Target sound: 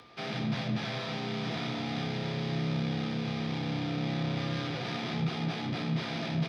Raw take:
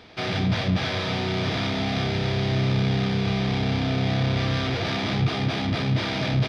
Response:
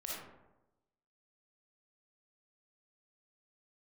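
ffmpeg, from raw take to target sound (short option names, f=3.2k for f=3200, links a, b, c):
-filter_complex "[0:a]acompressor=mode=upward:threshold=-44dB:ratio=2.5,afreqshift=30,aeval=exprs='val(0)+0.00447*sin(2*PI*1200*n/s)':c=same,asplit=2[a][b];[1:a]atrim=start_sample=2205,adelay=18[c];[b][c]afir=irnorm=-1:irlink=0,volume=-9dB[d];[a][d]amix=inputs=2:normalize=0,volume=-9dB" -ar 48000 -c:a libmp3lame -b:a 128k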